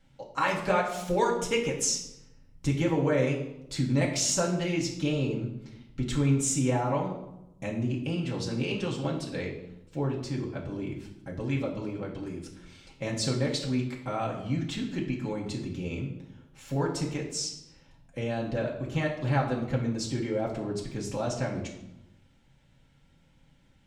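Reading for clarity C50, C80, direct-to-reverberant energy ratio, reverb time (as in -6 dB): 6.5 dB, 9.5 dB, -3.5 dB, 0.90 s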